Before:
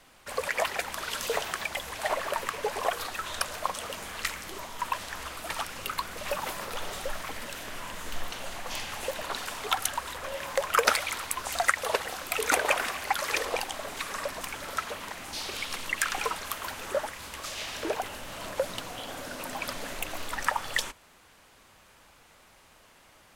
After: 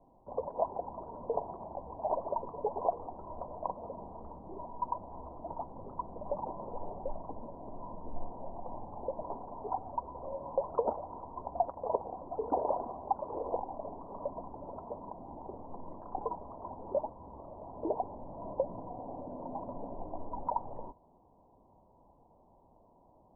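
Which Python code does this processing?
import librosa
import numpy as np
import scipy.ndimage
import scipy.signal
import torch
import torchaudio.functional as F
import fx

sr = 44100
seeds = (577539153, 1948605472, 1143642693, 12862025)

y = scipy.signal.sosfilt(scipy.signal.cheby1(6, 3, 1000.0, 'lowpass', fs=sr, output='sos'), x)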